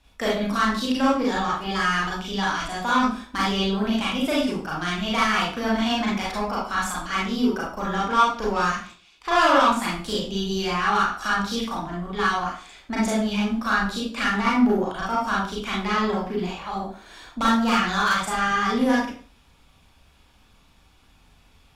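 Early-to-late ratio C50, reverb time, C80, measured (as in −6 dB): 1.5 dB, 0.40 s, 7.5 dB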